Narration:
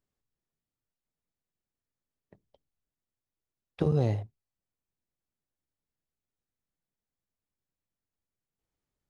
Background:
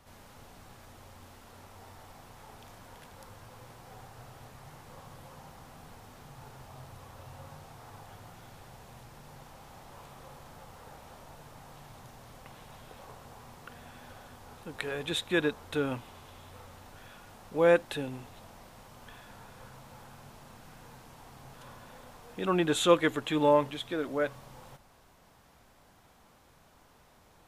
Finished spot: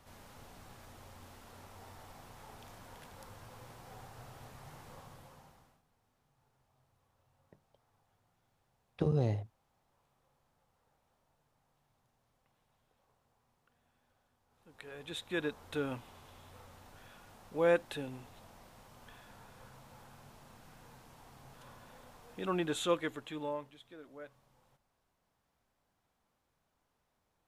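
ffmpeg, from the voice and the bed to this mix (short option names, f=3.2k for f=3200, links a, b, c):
-filter_complex "[0:a]adelay=5200,volume=-4.5dB[a];[1:a]volume=18.5dB,afade=t=out:st=4.84:d=0.98:silence=0.0630957,afade=t=in:st=14.49:d=1.23:silence=0.0944061,afade=t=out:st=22.38:d=1.32:silence=0.199526[b];[a][b]amix=inputs=2:normalize=0"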